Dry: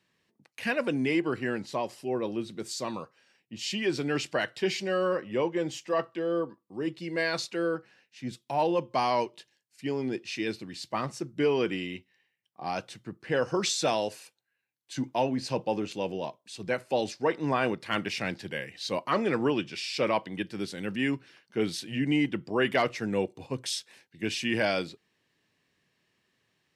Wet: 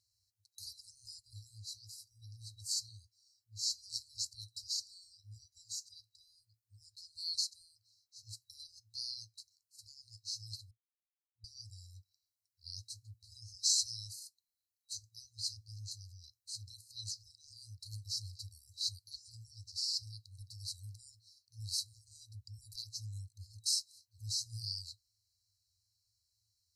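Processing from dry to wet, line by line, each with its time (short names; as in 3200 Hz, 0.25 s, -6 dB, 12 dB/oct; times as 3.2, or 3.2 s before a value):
10.71–11.44 mute
whole clip: FFT band-reject 110–3900 Hz; gain +1.5 dB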